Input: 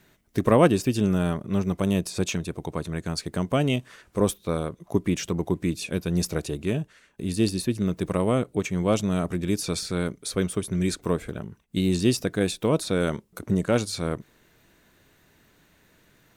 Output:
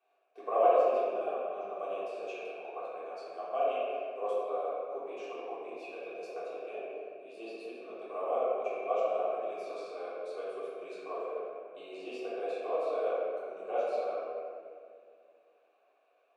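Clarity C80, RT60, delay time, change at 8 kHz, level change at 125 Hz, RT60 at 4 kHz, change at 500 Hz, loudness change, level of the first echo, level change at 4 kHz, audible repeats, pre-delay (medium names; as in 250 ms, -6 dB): -2.0 dB, 2.1 s, no echo, under -30 dB, under -40 dB, 1.5 s, -4.5 dB, -9.0 dB, no echo, -20.5 dB, no echo, 3 ms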